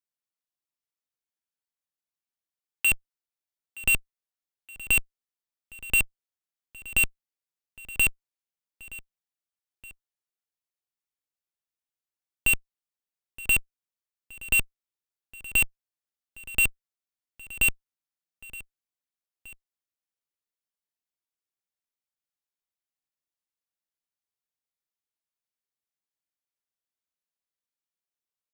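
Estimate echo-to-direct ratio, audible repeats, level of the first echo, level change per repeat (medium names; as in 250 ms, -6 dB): -18.0 dB, 2, -19.0 dB, -5.5 dB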